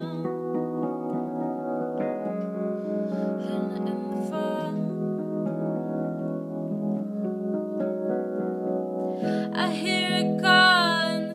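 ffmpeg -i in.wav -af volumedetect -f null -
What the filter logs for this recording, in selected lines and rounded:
mean_volume: -26.5 dB
max_volume: -7.2 dB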